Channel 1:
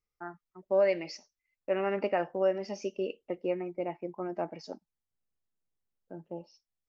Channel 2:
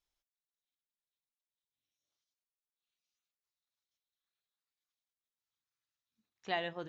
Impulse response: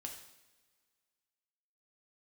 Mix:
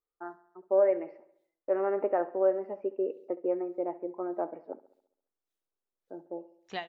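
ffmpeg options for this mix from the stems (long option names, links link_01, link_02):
-filter_complex "[0:a]lowpass=frequency=1500:width=0.5412,lowpass=frequency=1500:width=1.3066,lowshelf=frequency=240:width_type=q:width=1.5:gain=-11,volume=0dB,asplit=2[link_01][link_02];[link_02]volume=-17.5dB[link_03];[1:a]aeval=exprs='val(0)*pow(10,-35*(0.5-0.5*cos(2*PI*1.7*n/s))/20)':channel_layout=same,adelay=250,volume=2.5dB,asplit=2[link_04][link_05];[link_05]volume=-22.5dB[link_06];[link_03][link_06]amix=inputs=2:normalize=0,aecho=0:1:68|136|204|272|340|408|476|544:1|0.54|0.292|0.157|0.085|0.0459|0.0248|0.0134[link_07];[link_01][link_04][link_07]amix=inputs=3:normalize=0"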